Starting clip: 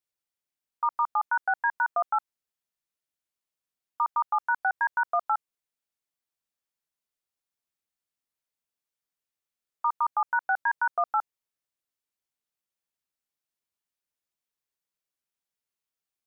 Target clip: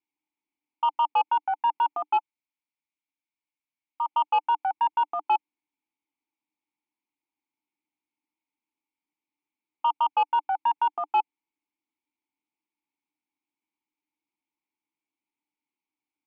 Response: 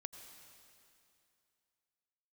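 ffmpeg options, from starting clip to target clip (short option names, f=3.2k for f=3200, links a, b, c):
-filter_complex "[0:a]asettb=1/sr,asplit=3[a][b][c];[a]atrim=end=2.174[d];[b]atrim=start=2.17:end=4.08,asetpts=PTS-STARTPTS,afade=t=in:d=0.004:c=qsin,afade=t=out:st=1.906:d=0.004:c=qsin,equalizer=f=430:w=0.65:g=-13[e];[c]atrim=start=4.076[f];[d][e]acrossfade=d=0.004:c1=hsin:c2=qsin[g];[g][f]acrossfade=d=0.004:c1=qsin:c2=hsin,asplit=3[h][i][j];[h]bandpass=f=300:t=q:w=8,volume=0dB[k];[i]bandpass=f=870:t=q:w=8,volume=-6dB[l];[j]bandpass=f=2.24k:t=q:w=8,volume=-9dB[m];[k][l][m]amix=inputs=3:normalize=0,aeval=exprs='0.133*sin(PI/2*4.47*val(0)/0.133)':c=same"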